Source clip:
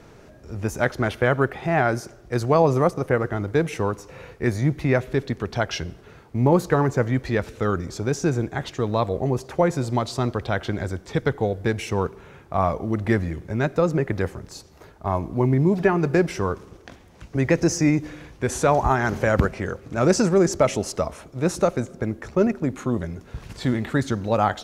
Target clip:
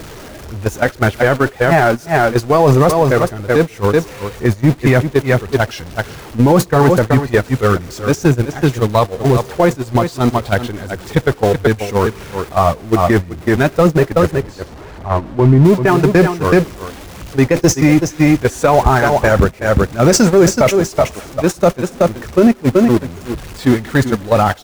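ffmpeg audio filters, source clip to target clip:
ffmpeg -i in.wav -filter_complex "[0:a]aeval=exprs='val(0)+0.5*0.0501*sgn(val(0))':channel_layout=same,asettb=1/sr,asplit=3[link_01][link_02][link_03];[link_01]atrim=end=14.314[link_04];[link_02]atrim=start=14.31:end=15.65,asetpts=PTS-STARTPTS,afade=type=in:duration=0.004:curve=qsin,afade=type=out:start_time=1.336:duration=0.004:curve=qsin,lowpass=frequency=1800:poles=1[link_05];[link_03]atrim=start=15.646[link_06];[link_04][link_05]acrossfade=duration=0.004:curve1=hsin:curve2=qsin[link_07];[link_07][link_06]acrossfade=duration=0.004:curve1=qsin:curve2=hsin,agate=range=-30dB:threshold=-17dB:ratio=16:detection=peak,aphaser=in_gain=1:out_gain=1:delay=4.4:decay=0.34:speed=1.8:type=triangular,asplit=2[link_08][link_09];[link_09]aecho=0:1:374:0.158[link_10];[link_08][link_10]amix=inputs=2:normalize=0,acompressor=threshold=-32dB:ratio=3,alimiter=level_in=28.5dB:limit=-1dB:release=50:level=0:latency=1,volume=-1dB" out.wav

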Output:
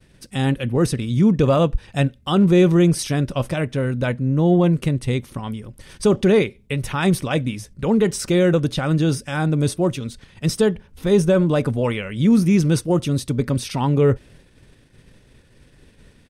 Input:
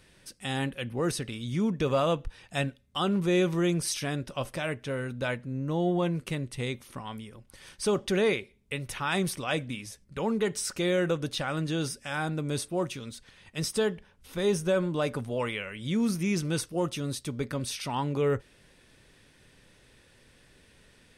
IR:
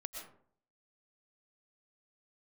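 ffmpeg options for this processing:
-af "atempo=1.3,lowshelf=frequency=420:gain=10,agate=range=-33dB:threshold=-48dB:ratio=3:detection=peak,volume=5dB"

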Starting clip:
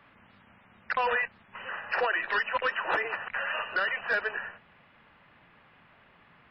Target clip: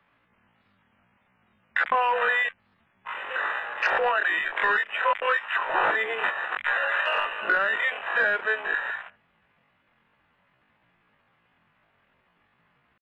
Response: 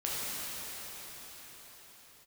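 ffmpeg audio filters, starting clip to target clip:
-filter_complex "[0:a]acrossover=split=150|580[link_01][link_02][link_03];[link_01]acompressor=threshold=-60dB:ratio=4[link_04];[link_02]acompressor=threshold=-44dB:ratio=4[link_05];[link_03]acompressor=threshold=-30dB:ratio=4[link_06];[link_04][link_05][link_06]amix=inputs=3:normalize=0,atempo=0.5,afwtdn=0.00708,volume=9dB"

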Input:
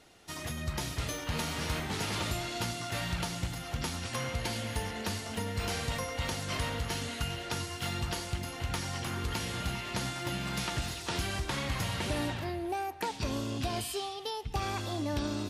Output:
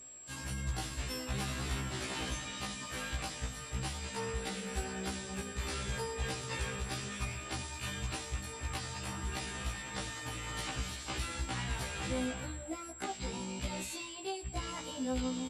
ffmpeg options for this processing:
ffmpeg -i in.wav -af "aeval=exprs='val(0)+0.00355*sin(2*PI*8800*n/s)':channel_layout=same,asetrate=38170,aresample=44100,atempo=1.15535,afftfilt=real='re*1.73*eq(mod(b,3),0)':imag='im*1.73*eq(mod(b,3),0)':win_size=2048:overlap=0.75,volume=-1.5dB" out.wav

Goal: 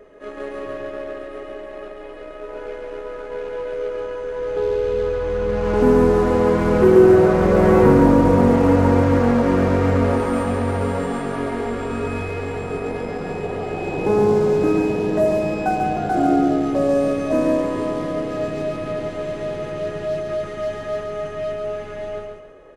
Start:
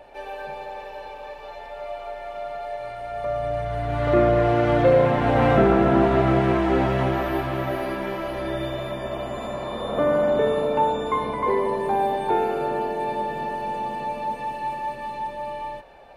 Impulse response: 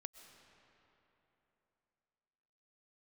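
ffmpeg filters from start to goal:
-filter_complex "[0:a]asplit=2[link_01][link_02];[link_02]acrusher=bits=4:mix=0:aa=0.5,volume=-9dB[link_03];[link_01][link_03]amix=inputs=2:normalize=0,asetrate=31311,aresample=44100,aecho=1:1:139|278|417|556:0.631|0.215|0.0729|0.0248"

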